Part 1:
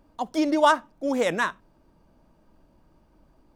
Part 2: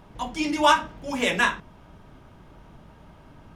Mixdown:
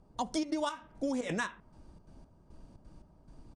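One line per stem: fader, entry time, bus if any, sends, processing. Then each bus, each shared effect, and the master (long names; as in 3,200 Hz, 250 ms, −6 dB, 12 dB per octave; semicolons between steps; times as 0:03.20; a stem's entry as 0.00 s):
−0.5 dB, 0.00 s, no send, elliptic low-pass filter 9,600 Hz, stop band 50 dB; bass and treble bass +9 dB, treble +9 dB; gate pattern "..xxx.xx." 174 BPM −12 dB
−12.5 dB, 0.6 ms, polarity flipped, no send, low-pass that shuts in the quiet parts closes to 720 Hz, open at −12.5 dBFS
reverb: not used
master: downward compressor 8 to 1, threshold −30 dBFS, peak gain reduction 16 dB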